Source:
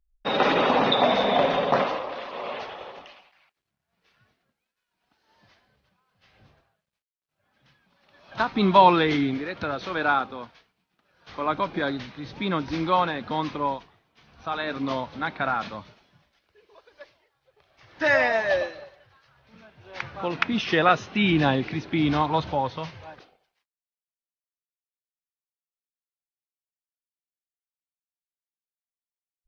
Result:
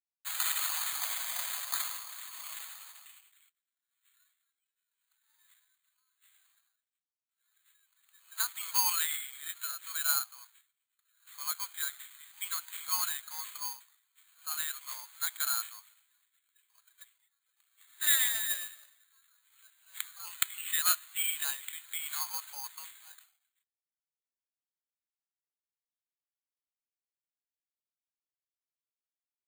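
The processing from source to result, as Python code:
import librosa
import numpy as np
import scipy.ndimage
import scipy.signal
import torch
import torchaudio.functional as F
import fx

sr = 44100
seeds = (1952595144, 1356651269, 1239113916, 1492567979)

p1 = scipy.signal.sosfilt(scipy.signal.butter(4, 1300.0, 'highpass', fs=sr, output='sos'), x)
p2 = fx.high_shelf(p1, sr, hz=6100.0, db=-6.0)
p3 = fx.rider(p2, sr, range_db=3, speed_s=2.0)
p4 = p2 + (p3 * 10.0 ** (2.0 / 20.0))
p5 = fx.quant_float(p4, sr, bits=2)
p6 = (np.kron(scipy.signal.resample_poly(p5, 1, 8), np.eye(8)[0]) * 8)[:len(p5)]
y = p6 * 10.0 ** (-18.0 / 20.0)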